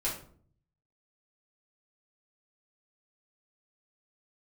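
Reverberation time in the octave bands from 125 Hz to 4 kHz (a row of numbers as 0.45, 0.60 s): 1.0, 0.75, 0.60, 0.45, 0.35, 0.30 s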